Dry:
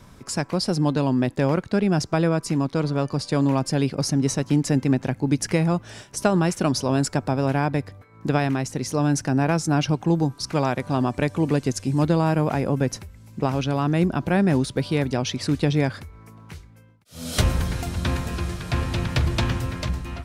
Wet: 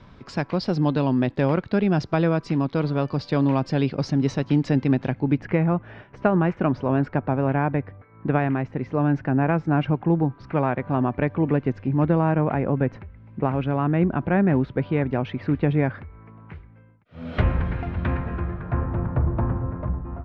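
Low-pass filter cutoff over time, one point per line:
low-pass filter 24 dB per octave
0:05.05 4,100 Hz
0:05.47 2,300 Hz
0:18.01 2,300 Hz
0:19.15 1,200 Hz

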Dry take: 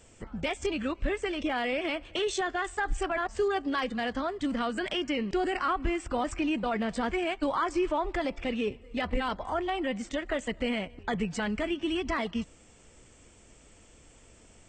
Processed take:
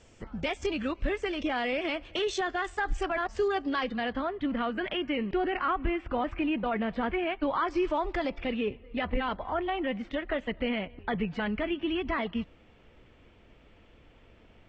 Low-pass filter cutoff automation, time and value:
low-pass filter 24 dB per octave
0:03.51 6,400 Hz
0:04.32 3,200 Hz
0:07.42 3,200 Hz
0:07.98 6,900 Hz
0:08.65 3,500 Hz

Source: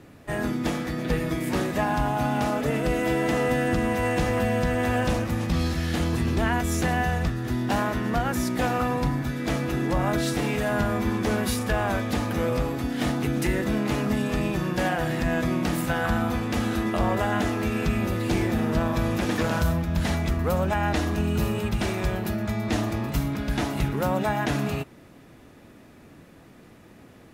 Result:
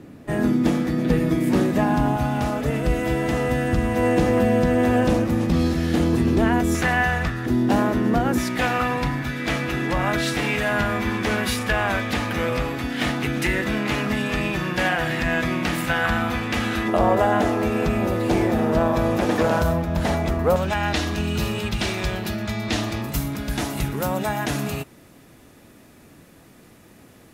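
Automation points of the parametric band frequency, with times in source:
parametric band +9 dB 2 octaves
240 Hz
from 0:02.16 64 Hz
from 0:03.96 320 Hz
from 0:06.75 1,700 Hz
from 0:07.46 310 Hz
from 0:08.38 2,300 Hz
from 0:16.88 610 Hz
from 0:20.56 3,900 Hz
from 0:23.02 12,000 Hz

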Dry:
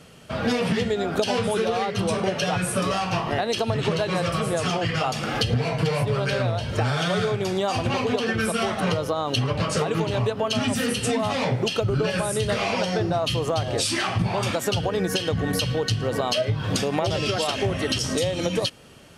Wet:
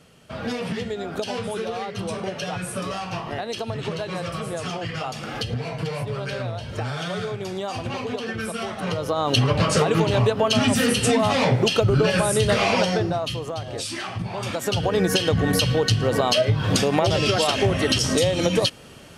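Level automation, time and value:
0:08.80 −5 dB
0:09.29 +4.5 dB
0:12.80 +4.5 dB
0:13.46 −6 dB
0:14.30 −6 dB
0:14.97 +4 dB

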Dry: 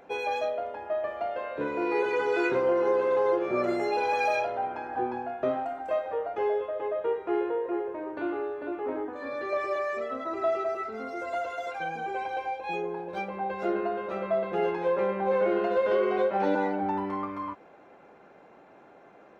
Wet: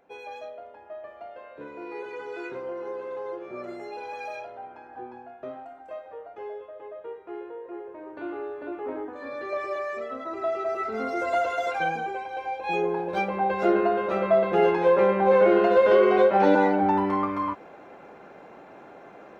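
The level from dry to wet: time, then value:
0:07.52 −10 dB
0:08.54 −1 dB
0:10.54 −1 dB
0:10.98 +7 dB
0:11.89 +7 dB
0:12.26 −3 dB
0:12.83 +7 dB

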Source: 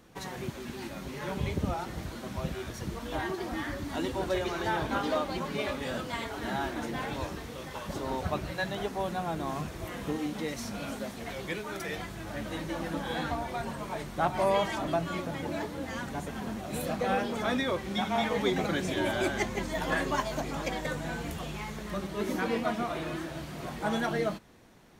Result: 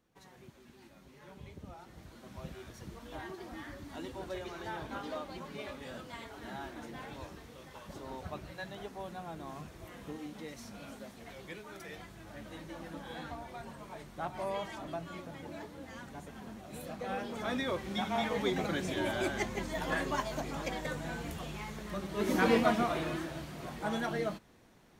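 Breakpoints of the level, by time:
0:01.63 −18 dB
0:02.44 −10.5 dB
0:16.95 −10.5 dB
0:17.70 −4 dB
0:22.04 −4 dB
0:22.48 +4.5 dB
0:23.57 −4.5 dB

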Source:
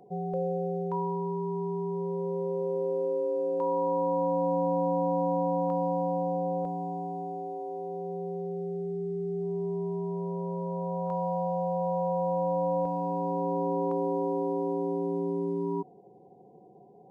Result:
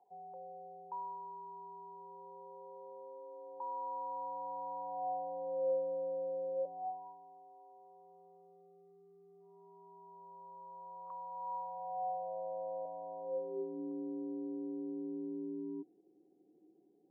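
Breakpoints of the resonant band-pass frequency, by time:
resonant band-pass, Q 11
0:04.80 870 Hz
0:05.84 490 Hz
0:06.54 490 Hz
0:07.18 1,100 Hz
0:11.29 1,100 Hz
0:12.35 640 Hz
0:13.19 640 Hz
0:13.79 310 Hz

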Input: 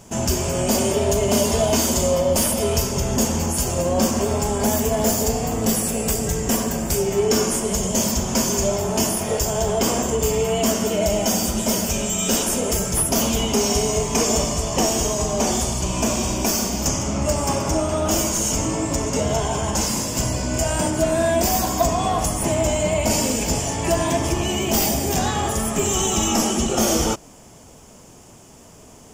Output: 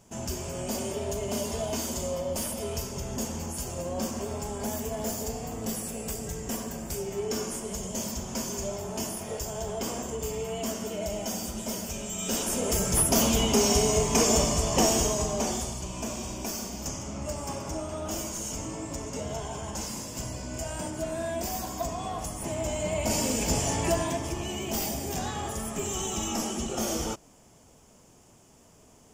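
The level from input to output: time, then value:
0:12.04 −12.5 dB
0:12.93 −3 dB
0:14.94 −3 dB
0:15.89 −13 dB
0:22.35 −13 dB
0:23.75 −3 dB
0:24.22 −11 dB

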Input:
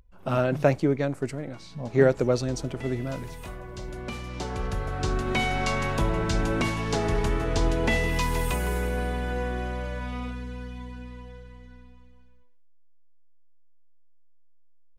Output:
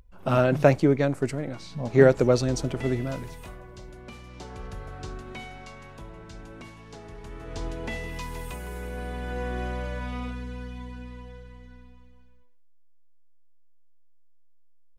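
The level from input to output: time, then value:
0:02.88 +3 dB
0:03.99 −8.5 dB
0:04.91 −8.5 dB
0:05.74 −18 dB
0:07.18 −18 dB
0:07.60 −9.5 dB
0:08.68 −9.5 dB
0:09.63 0 dB

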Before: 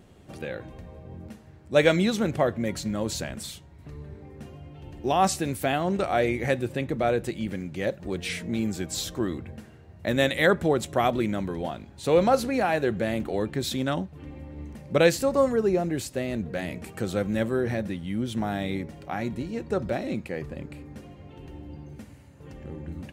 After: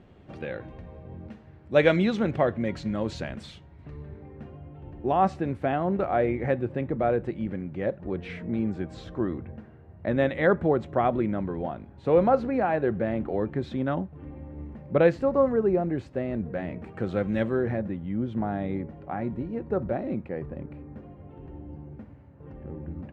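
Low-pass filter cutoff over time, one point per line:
0:04.01 2,900 Hz
0:04.70 1,500 Hz
0:16.83 1,500 Hz
0:17.41 3,100 Hz
0:17.82 1,300 Hz

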